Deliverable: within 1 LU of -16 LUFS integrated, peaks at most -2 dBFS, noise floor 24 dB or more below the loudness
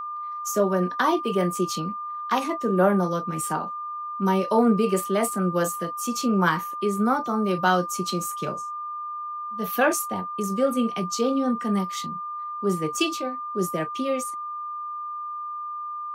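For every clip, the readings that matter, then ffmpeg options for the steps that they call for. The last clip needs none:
steady tone 1200 Hz; tone level -30 dBFS; loudness -25.5 LUFS; peak -6.5 dBFS; loudness target -16.0 LUFS
-> -af "bandreject=f=1.2k:w=30"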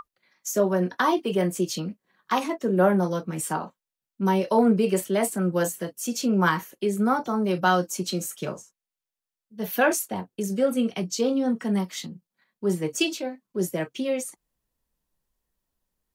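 steady tone none; loudness -25.5 LUFS; peak -7.5 dBFS; loudness target -16.0 LUFS
-> -af "volume=9.5dB,alimiter=limit=-2dB:level=0:latency=1"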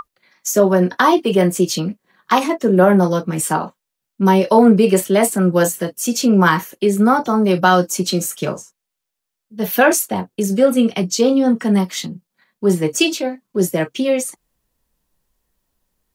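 loudness -16.0 LUFS; peak -2.0 dBFS; noise floor -80 dBFS

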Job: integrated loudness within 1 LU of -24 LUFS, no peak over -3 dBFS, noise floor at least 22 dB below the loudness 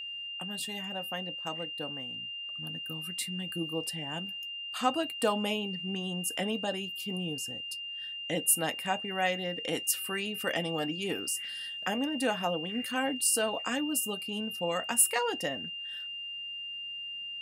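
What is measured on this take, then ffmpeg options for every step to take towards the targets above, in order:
steady tone 2800 Hz; tone level -37 dBFS; loudness -32.0 LUFS; peak -12.0 dBFS; loudness target -24.0 LUFS
-> -af "bandreject=f=2.8k:w=30"
-af "volume=8dB"

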